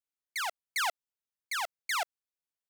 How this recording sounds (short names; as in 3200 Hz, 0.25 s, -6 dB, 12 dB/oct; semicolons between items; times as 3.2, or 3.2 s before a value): noise floor -94 dBFS; spectral tilt -4.0 dB/oct